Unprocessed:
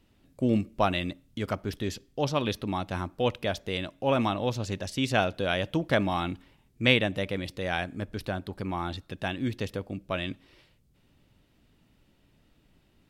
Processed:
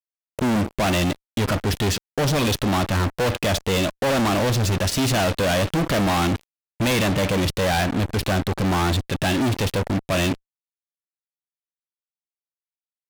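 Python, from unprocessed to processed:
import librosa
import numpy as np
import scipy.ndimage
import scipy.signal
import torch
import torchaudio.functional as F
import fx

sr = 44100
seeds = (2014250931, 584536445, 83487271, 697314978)

y = fx.hpss(x, sr, part='harmonic', gain_db=5)
y = fx.fuzz(y, sr, gain_db=43.0, gate_db=-43.0)
y = F.gain(torch.from_numpy(y), -5.5).numpy()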